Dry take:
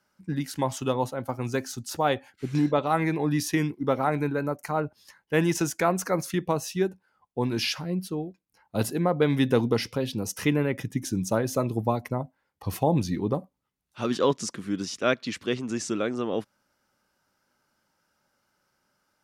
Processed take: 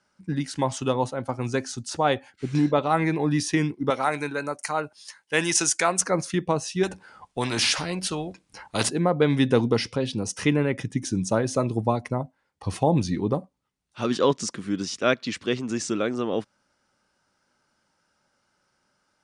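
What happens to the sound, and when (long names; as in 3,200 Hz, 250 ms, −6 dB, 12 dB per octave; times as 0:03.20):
0:03.90–0:06.01: spectral tilt +3.5 dB per octave
0:06.83–0:08.89: every bin compressed towards the loudest bin 2 to 1
whole clip: elliptic low-pass filter 9,600 Hz, stop band 40 dB; level +3 dB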